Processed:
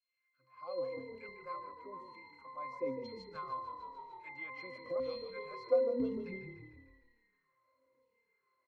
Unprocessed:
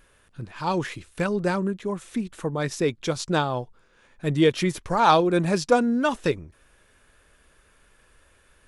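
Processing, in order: LFO high-pass saw down 1 Hz 290–3800 Hz; pitch-class resonator C, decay 0.64 s; frequency-shifting echo 150 ms, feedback 59%, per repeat -36 Hz, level -9 dB; 3.35–4.96 s: three bands compressed up and down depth 70%; trim +5.5 dB

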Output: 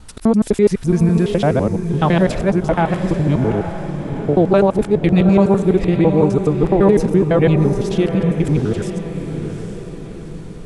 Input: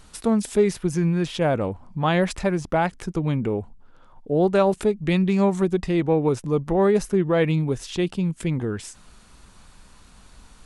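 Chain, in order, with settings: time reversed locally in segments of 84 ms; tilt EQ -1.5 dB/octave; on a send: echo that smears into a reverb 808 ms, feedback 47%, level -8 dB; on the sum: trim +4 dB

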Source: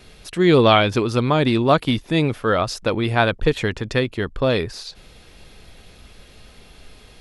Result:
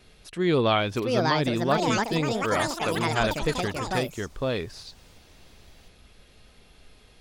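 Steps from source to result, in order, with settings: ever faster or slower copies 788 ms, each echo +6 st, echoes 3; trim -8.5 dB

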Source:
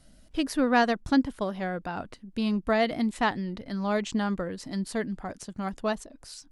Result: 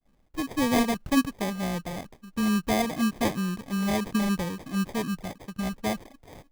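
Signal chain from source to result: CVSD coder 64 kbps; expander -49 dBFS; level rider gain up to 4 dB; dynamic bell 160 Hz, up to +8 dB, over -40 dBFS, Q 1.6; sample-rate reducer 1.4 kHz, jitter 0%; trim -5.5 dB

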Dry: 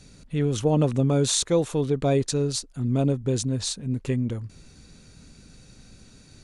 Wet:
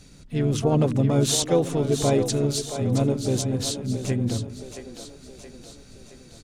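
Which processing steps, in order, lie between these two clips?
harmony voices -3 st -10 dB, +7 st -13 dB; two-band feedback delay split 310 Hz, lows 96 ms, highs 671 ms, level -9 dB

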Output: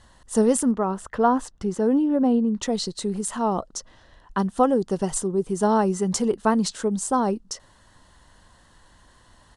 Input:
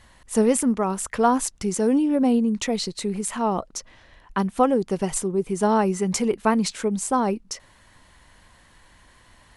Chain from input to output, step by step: peaking EQ 2.3 kHz -14 dB 0.37 oct; resampled via 22.05 kHz; 0.71–2.63 s: tone controls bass -1 dB, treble -14 dB

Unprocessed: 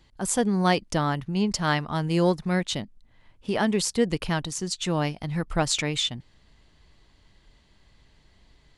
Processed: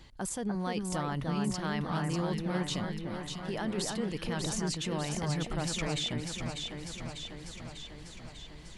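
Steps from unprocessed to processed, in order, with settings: reverse; compression, threshold -32 dBFS, peak gain reduction 15 dB; reverse; peak limiter -31.5 dBFS, peak gain reduction 12 dB; echo whose repeats swap between lows and highs 298 ms, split 2 kHz, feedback 80%, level -3 dB; trim +5.5 dB

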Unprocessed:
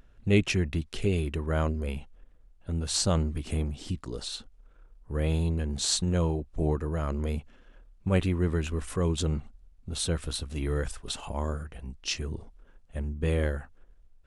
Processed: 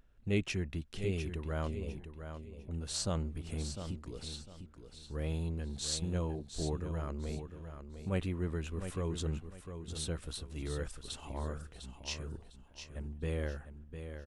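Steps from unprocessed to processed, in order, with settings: 1.73–2.71 s: elliptic low-pass 1.1 kHz; on a send: feedback delay 703 ms, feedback 27%, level -9 dB; on the sum: trim -9 dB

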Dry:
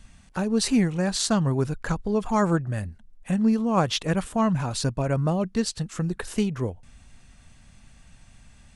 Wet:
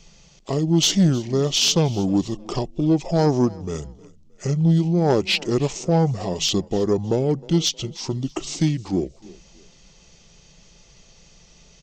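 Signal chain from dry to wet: graphic EQ 125/250/500/1000/2000/4000/8000 Hz -8/+7/+9/+4/-8/+8/+10 dB; Chebyshev shaper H 2 -15 dB, 5 -14 dB, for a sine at 0.5 dBFS; on a send: frequency-shifting echo 231 ms, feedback 32%, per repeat +31 Hz, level -22 dB; on the sum: speed mistake 45 rpm record played at 33 rpm; trim -7 dB

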